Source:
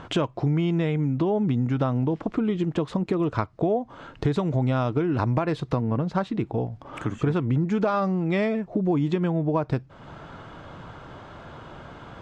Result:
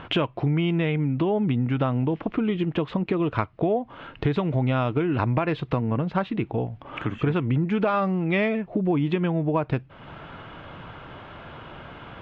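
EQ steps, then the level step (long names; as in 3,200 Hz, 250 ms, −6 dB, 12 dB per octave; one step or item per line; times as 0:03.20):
low-pass with resonance 2,800 Hz, resonance Q 2.2
0.0 dB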